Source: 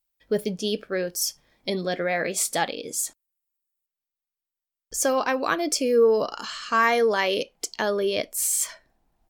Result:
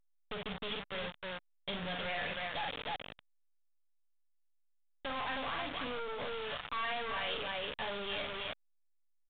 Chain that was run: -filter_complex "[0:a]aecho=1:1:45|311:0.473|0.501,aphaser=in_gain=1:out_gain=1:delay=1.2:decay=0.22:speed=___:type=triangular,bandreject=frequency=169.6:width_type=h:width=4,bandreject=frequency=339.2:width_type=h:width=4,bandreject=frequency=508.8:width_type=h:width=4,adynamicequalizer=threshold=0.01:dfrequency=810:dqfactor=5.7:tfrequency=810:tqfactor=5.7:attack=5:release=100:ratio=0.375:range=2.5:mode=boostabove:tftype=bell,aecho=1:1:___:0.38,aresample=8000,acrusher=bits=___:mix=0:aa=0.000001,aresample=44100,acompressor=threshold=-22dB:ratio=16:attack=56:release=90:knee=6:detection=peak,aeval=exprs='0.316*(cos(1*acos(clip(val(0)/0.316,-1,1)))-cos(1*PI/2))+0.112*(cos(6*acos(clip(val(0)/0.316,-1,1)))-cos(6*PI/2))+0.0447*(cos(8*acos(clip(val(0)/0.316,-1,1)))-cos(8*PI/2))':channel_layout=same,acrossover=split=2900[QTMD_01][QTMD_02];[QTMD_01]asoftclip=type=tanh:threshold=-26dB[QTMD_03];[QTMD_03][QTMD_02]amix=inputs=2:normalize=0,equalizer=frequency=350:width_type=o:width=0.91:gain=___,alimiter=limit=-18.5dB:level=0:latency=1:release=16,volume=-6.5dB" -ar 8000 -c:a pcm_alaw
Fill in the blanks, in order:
0.65, 6.9, 4, -9.5